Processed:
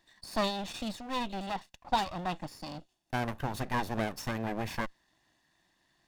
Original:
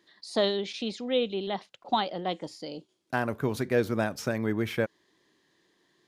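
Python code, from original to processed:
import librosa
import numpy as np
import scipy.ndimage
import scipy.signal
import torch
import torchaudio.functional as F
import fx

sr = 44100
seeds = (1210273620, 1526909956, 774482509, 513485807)

y = fx.lower_of_two(x, sr, delay_ms=1.1)
y = y * 10.0 ** (-1.5 / 20.0)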